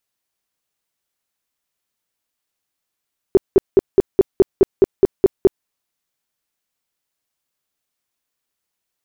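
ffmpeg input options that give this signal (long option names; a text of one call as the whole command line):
ffmpeg -f lavfi -i "aevalsrc='0.562*sin(2*PI*388*mod(t,0.21))*lt(mod(t,0.21),8/388)':duration=2.31:sample_rate=44100" out.wav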